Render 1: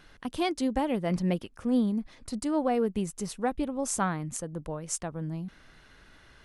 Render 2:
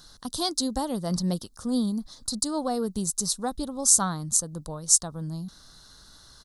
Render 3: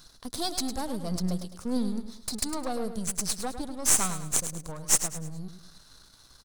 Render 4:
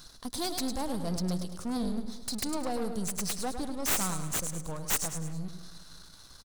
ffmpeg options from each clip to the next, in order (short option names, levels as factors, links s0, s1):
-af "firequalizer=gain_entry='entry(170,0);entry(350,-5);entry(1200,1);entry(2400,-19);entry(3900,13)':delay=0.05:min_phase=1,volume=1.19"
-filter_complex "[0:a]aeval=exprs='if(lt(val(0),0),0.251*val(0),val(0))':c=same,asplit=2[s0][s1];[s1]aecho=0:1:105|210|315|420:0.316|0.114|0.041|0.0148[s2];[s0][s2]amix=inputs=2:normalize=0"
-filter_complex "[0:a]aeval=exprs='0.841*(cos(1*acos(clip(val(0)/0.841,-1,1)))-cos(1*PI/2))+0.188*(cos(8*acos(clip(val(0)/0.841,-1,1)))-cos(8*PI/2))':c=same,asoftclip=type=tanh:threshold=0.106,asplit=2[s0][s1];[s1]adelay=181,lowpass=f=3600:p=1,volume=0.141,asplit=2[s2][s3];[s3]adelay=181,lowpass=f=3600:p=1,volume=0.53,asplit=2[s4][s5];[s5]adelay=181,lowpass=f=3600:p=1,volume=0.53,asplit=2[s6][s7];[s7]adelay=181,lowpass=f=3600:p=1,volume=0.53,asplit=2[s8][s9];[s9]adelay=181,lowpass=f=3600:p=1,volume=0.53[s10];[s0][s2][s4][s6][s8][s10]amix=inputs=6:normalize=0,volume=1.41"